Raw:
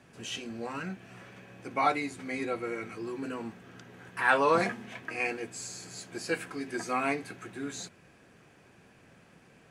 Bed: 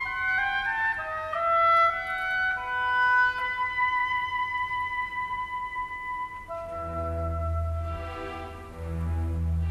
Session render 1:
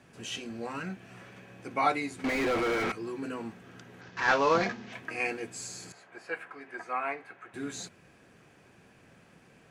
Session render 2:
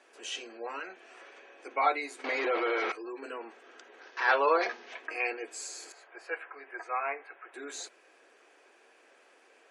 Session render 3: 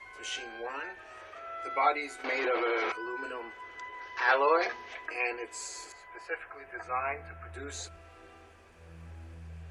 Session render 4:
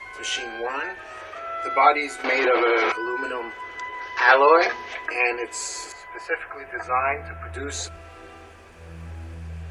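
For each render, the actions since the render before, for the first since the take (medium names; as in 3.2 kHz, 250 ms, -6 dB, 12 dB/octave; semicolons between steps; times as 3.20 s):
2.24–2.92 s: overdrive pedal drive 38 dB, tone 1.4 kHz, clips at -20.5 dBFS; 4.01–4.93 s: CVSD coder 32 kbps; 5.92–7.54 s: three-band isolator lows -17 dB, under 530 Hz, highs -20 dB, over 2.4 kHz
inverse Chebyshev high-pass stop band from 180 Hz, stop band 40 dB; spectral gate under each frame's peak -30 dB strong
add bed -18.5 dB
trim +10 dB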